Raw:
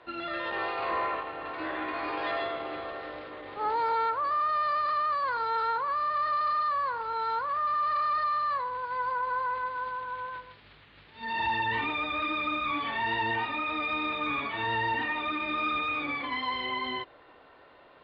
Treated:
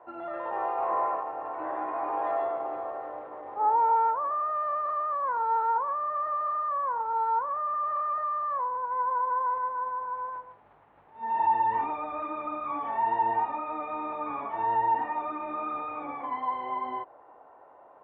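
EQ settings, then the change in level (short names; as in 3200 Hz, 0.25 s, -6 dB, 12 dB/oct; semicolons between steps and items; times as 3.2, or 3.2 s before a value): band-pass 830 Hz, Q 2.9; air absorption 260 m; tilt -3 dB/oct; +8.0 dB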